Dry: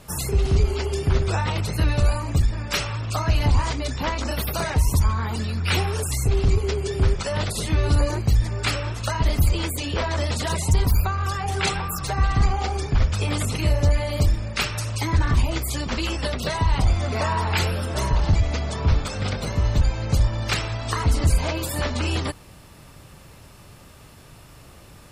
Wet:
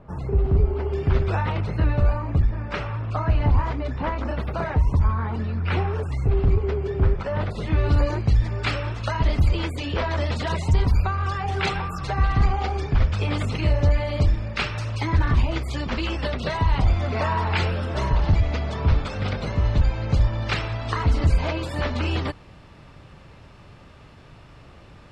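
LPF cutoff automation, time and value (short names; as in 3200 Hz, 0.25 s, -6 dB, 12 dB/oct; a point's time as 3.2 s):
0.77 s 1100 Hz
1.11 s 2800 Hz
1.93 s 1700 Hz
7.45 s 1700 Hz
8.03 s 3500 Hz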